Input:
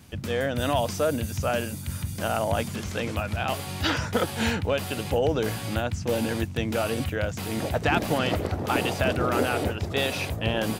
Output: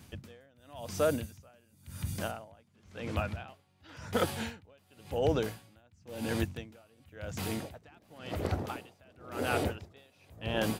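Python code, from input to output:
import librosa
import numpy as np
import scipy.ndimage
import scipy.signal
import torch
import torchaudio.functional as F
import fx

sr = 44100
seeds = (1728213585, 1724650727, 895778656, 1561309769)

y = fx.high_shelf(x, sr, hz=6000.0, db=-10.0, at=(2.31, 3.89))
y = y * 10.0 ** (-33 * (0.5 - 0.5 * np.cos(2.0 * np.pi * 0.94 * np.arange(len(y)) / sr)) / 20.0)
y = y * librosa.db_to_amplitude(-3.0)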